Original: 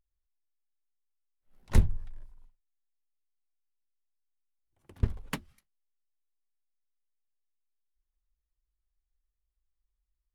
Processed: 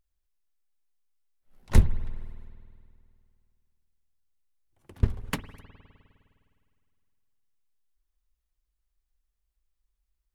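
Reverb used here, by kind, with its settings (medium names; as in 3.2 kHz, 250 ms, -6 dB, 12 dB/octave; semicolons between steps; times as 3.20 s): spring tank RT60 2.4 s, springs 51 ms, chirp 60 ms, DRR 14.5 dB; trim +4 dB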